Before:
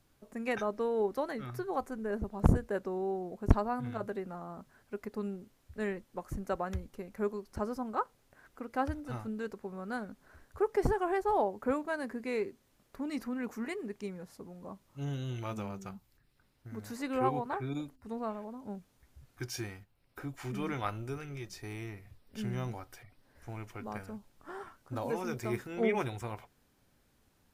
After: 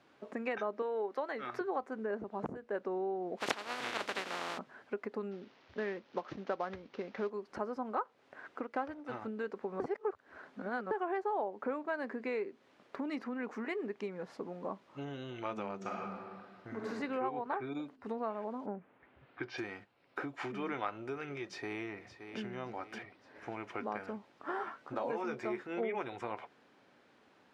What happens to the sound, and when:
0.82–1.61 HPF 490 Hz 6 dB/oct
3.37–4.57 spectral contrast lowered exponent 0.21
5.31–7.3 CVSD 32 kbps
8.64–9.22 G.711 law mismatch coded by A
9.8–10.91 reverse
15.76–16.89 reverb throw, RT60 1.6 s, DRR -3 dB
18.65–19.57 LPF 1900 Hz -> 4400 Hz 24 dB/oct
21.44–22.41 echo throw 0.57 s, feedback 50%, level -13 dB
24.52–25.66 doubler 14 ms -6 dB
whole clip: LPF 3000 Hz 12 dB/oct; compressor 5:1, threshold -43 dBFS; HPF 300 Hz 12 dB/oct; gain +10 dB

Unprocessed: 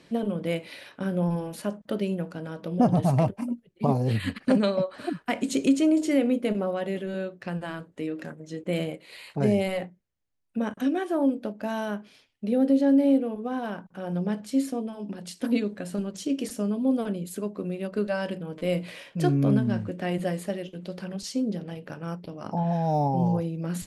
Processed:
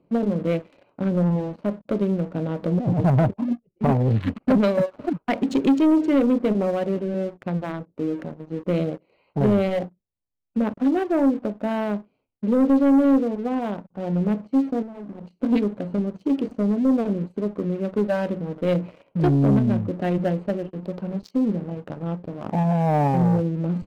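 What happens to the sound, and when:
2.32–3.05 negative-ratio compressor -24 dBFS, ratio -0.5
14.82–15.43 compressor 10:1, threshold -37 dBFS
whole clip: Wiener smoothing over 25 samples; Bessel low-pass 2900 Hz, order 2; sample leveller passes 2; gain -1 dB

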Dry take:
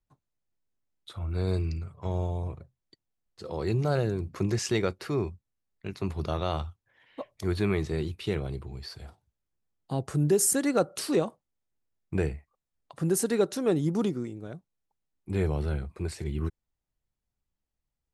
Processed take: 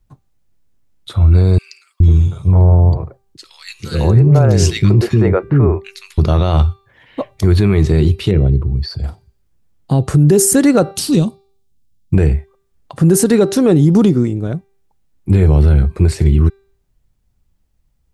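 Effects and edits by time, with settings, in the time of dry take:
1.58–6.18 three bands offset in time highs, lows, mids 0.42/0.5 s, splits 340/1900 Hz
8.31–9.04 formant sharpening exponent 1.5
10.91–12.14 band shelf 890 Hz -13 dB 3 oct
whole clip: low shelf 240 Hz +11 dB; de-hum 392.9 Hz, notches 14; maximiser +16 dB; gain -2 dB

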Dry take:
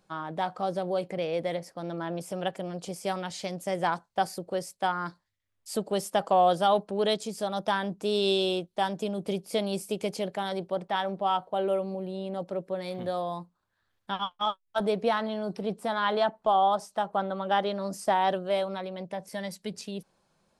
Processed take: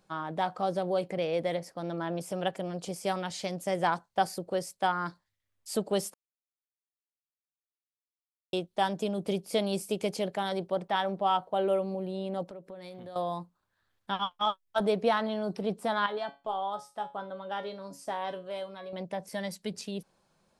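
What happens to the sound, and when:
6.14–8.53 mute
12.48–13.16 compressor 4:1, threshold -43 dBFS
16.06–18.93 resonator 140 Hz, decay 0.27 s, mix 80%

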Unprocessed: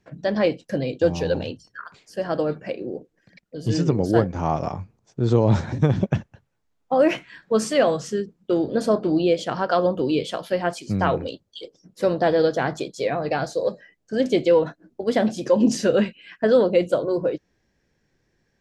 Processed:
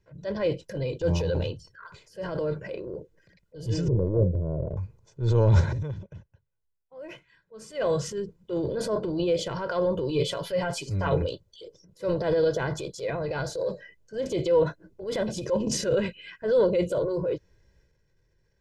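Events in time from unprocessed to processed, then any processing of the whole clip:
3.88–4.77 steep low-pass 650 Hz 72 dB/oct
5.7–7.86 dip -17.5 dB, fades 0.18 s
10.09–11.22 comb 7.1 ms, depth 75%
whole clip: transient shaper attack -8 dB, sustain +7 dB; low shelf 160 Hz +10 dB; comb 2 ms, depth 66%; gain -8 dB

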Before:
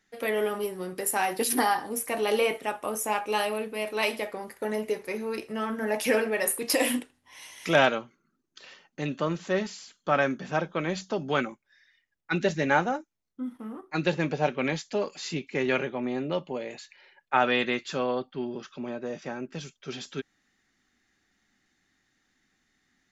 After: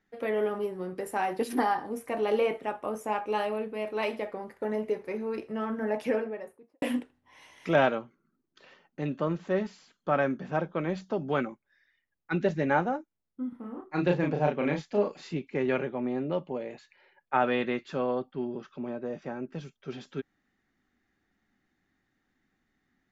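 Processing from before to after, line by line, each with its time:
5.79–6.82 studio fade out
13.49–15.27 doubler 34 ms -3 dB
whole clip: LPF 1100 Hz 6 dB/oct

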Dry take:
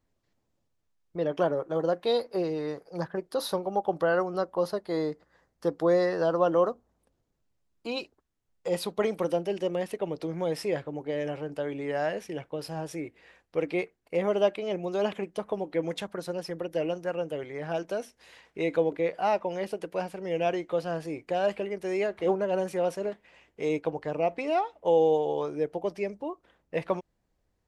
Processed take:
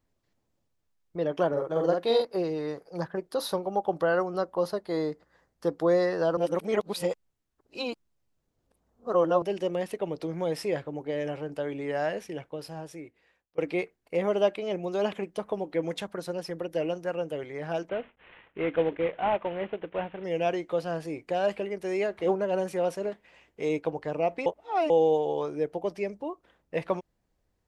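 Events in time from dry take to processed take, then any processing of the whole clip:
1.48–2.25 doubler 48 ms -3 dB
6.37–9.42 reverse
12.17–13.58 fade out, to -22.5 dB
17.89–20.24 CVSD 16 kbps
24.46–24.9 reverse

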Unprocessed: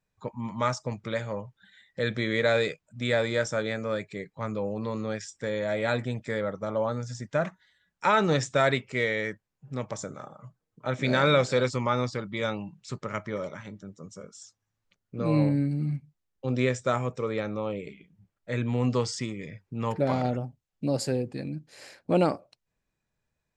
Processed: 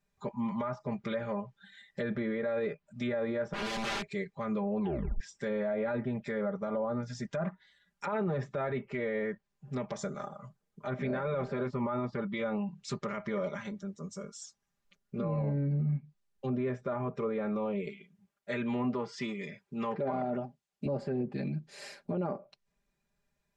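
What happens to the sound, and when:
3.53–4.07 wrapped overs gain 29 dB
4.79 tape stop 0.41 s
17.89–20.86 HPF 280 Hz 6 dB/oct
whole clip: treble ducked by the level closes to 1300 Hz, closed at -25 dBFS; comb 5 ms, depth 94%; limiter -23.5 dBFS; gain -1.5 dB

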